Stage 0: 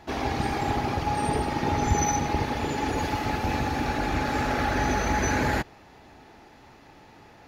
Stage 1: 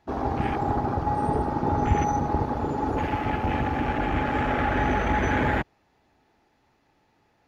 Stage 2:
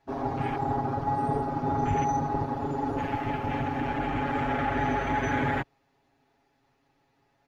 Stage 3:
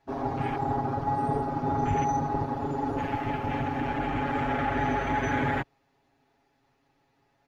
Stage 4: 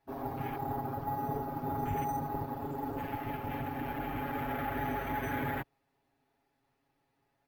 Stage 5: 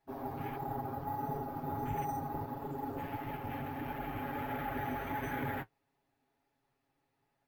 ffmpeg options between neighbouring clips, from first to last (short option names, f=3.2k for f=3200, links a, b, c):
-af "afwtdn=0.0251,volume=1.5dB"
-af "aecho=1:1:7.3:0.93,volume=-6.5dB"
-af anull
-af "acrusher=samples=3:mix=1:aa=0.000001,volume=-7.5dB"
-af "flanger=delay=4.6:depth=9.3:regen=-36:speed=1.5:shape=triangular,volume=1dB"